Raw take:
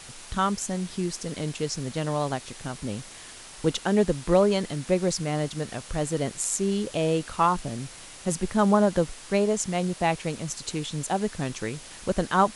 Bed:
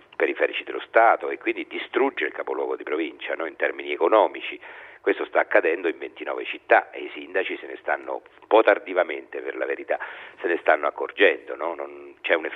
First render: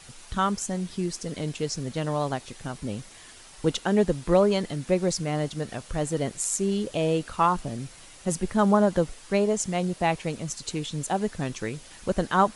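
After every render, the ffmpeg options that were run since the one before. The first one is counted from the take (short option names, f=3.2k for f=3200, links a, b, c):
-af "afftdn=nr=6:nf=-45"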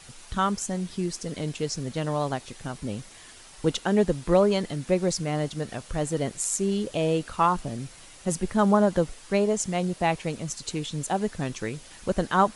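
-af anull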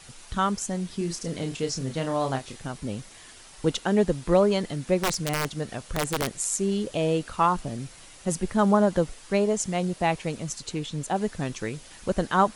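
-filter_complex "[0:a]asettb=1/sr,asplit=3[a][b][c];[a]atrim=end=0.974[d];[b]atrim=start=0.97:end=2.59,asetpts=PTS-STARTPTS,afade=t=in:d=0.004:c=qsin,afade=t=out:st=1.616:d=0.004:c=qsin,asplit=2[e][f];[f]adelay=30,volume=-6dB[g];[e][g]amix=inputs=2:normalize=0,atrim=end_sample=71442[h];[c]atrim=start=2.586[i];[d][h]acrossfade=d=0.004:c1=hsin:c2=qsin[j];[j][i]acrossfade=d=0.004:c1=qsin:c2=hsin,asettb=1/sr,asplit=3[k][l][m];[k]atrim=end=5.024[n];[l]atrim=start=5.02:end=6.31,asetpts=PTS-STARTPTS,afade=t=in:d=0.004:c=qsin,afade=t=out:st=1.286:d=0.004:c=qsin,aeval=exprs='(mod(7.94*val(0)+1,2)-1)/7.94':c=same[o];[m]atrim=start=6.306[p];[n][o]acrossfade=d=0.004:c1=hsin:c2=qsin[q];[q][p]acrossfade=d=0.004:c1=qsin:c2=hsin,asettb=1/sr,asplit=3[r][s][t];[r]atrim=end=10.624[u];[s]atrim=start=10.62:end=11.16,asetpts=PTS-STARTPTS,afade=t=in:d=0.004:c=qsin,afade=t=out:st=0.536:d=0.004:c=qsin,highshelf=f=4.7k:g=-5[v];[t]atrim=start=11.156[w];[u][v]acrossfade=d=0.004:c1=hsin:c2=qsin[x];[x][w]acrossfade=d=0.004:c1=qsin:c2=hsin"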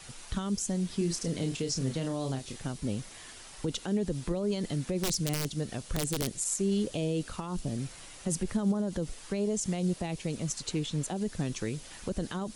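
-filter_complex "[0:a]alimiter=limit=-19.5dB:level=0:latency=1:release=61,acrossover=split=450|3000[a][b][c];[b]acompressor=threshold=-43dB:ratio=6[d];[a][d][c]amix=inputs=3:normalize=0"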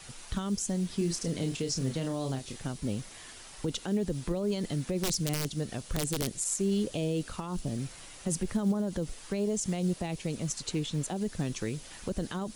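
-af "acrusher=bits=9:mode=log:mix=0:aa=0.000001"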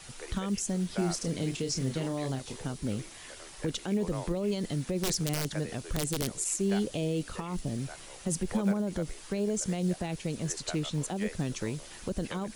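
-filter_complex "[1:a]volume=-23.5dB[a];[0:a][a]amix=inputs=2:normalize=0"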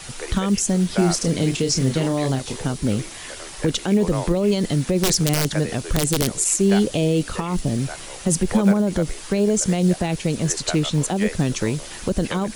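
-af "volume=11.5dB,alimiter=limit=-3dB:level=0:latency=1"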